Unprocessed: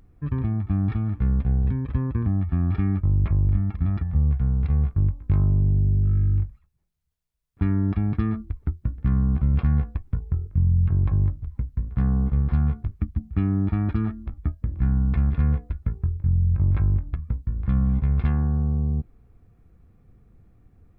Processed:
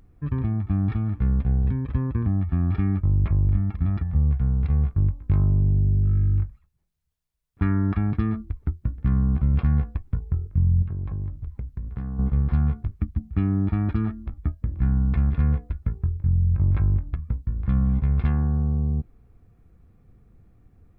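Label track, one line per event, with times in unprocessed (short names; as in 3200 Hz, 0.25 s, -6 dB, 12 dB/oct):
6.380000	8.110000	dynamic EQ 1400 Hz, up to +8 dB, over -53 dBFS, Q 1.2
10.820000	12.190000	compressor, threshold -26 dBFS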